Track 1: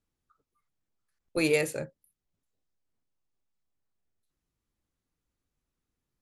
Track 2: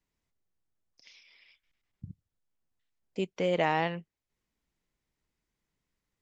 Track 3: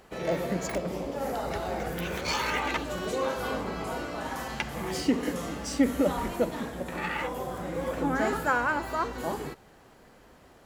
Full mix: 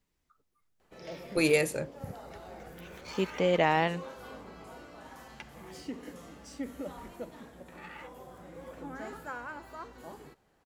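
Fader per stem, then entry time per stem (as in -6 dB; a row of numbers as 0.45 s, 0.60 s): +0.5 dB, +2.0 dB, -14.5 dB; 0.00 s, 0.00 s, 0.80 s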